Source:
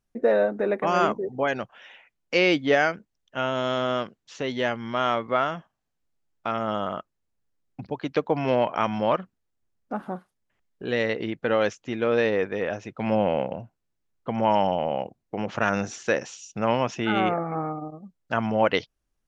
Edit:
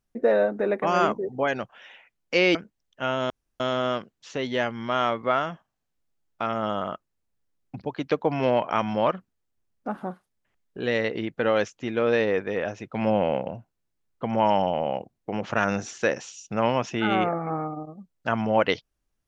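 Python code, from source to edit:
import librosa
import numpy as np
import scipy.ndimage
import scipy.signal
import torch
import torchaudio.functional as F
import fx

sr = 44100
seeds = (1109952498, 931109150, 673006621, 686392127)

y = fx.edit(x, sr, fx.cut(start_s=2.55, length_s=0.35),
    fx.insert_room_tone(at_s=3.65, length_s=0.3), tone=tone)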